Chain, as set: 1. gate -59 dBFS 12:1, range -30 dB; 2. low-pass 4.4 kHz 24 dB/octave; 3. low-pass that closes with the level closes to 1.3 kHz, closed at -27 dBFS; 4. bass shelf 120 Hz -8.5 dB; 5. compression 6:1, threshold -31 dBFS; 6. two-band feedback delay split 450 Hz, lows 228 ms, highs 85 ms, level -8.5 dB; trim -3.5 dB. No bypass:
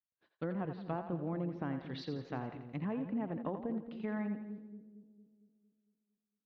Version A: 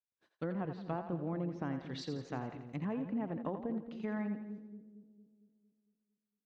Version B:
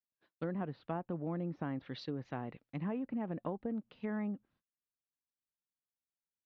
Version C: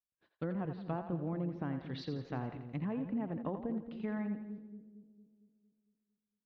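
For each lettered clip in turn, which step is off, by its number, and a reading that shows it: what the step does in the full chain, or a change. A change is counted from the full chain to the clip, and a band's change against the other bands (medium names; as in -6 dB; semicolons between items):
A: 2, 4 kHz band +1.5 dB; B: 6, echo-to-direct -7.0 dB to none; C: 4, 125 Hz band +2.5 dB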